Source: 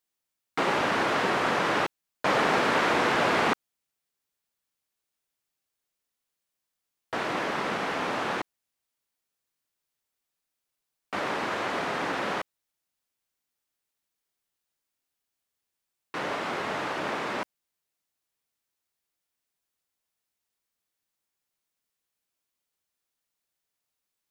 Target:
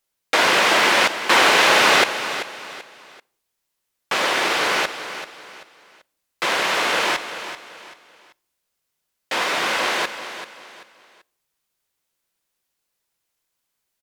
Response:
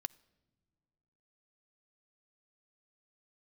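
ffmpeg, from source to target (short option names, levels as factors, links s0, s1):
-filter_complex "[0:a]aecho=1:1:670|1340|2010:0.266|0.0878|0.029,asplit=2[s0][s1];[1:a]atrim=start_sample=2205,afade=t=out:st=0.42:d=0.01,atrim=end_sample=18963[s2];[s1][s2]afir=irnorm=-1:irlink=0,volume=3.76[s3];[s0][s3]amix=inputs=2:normalize=0,asetrate=76440,aresample=44100,volume=0.75"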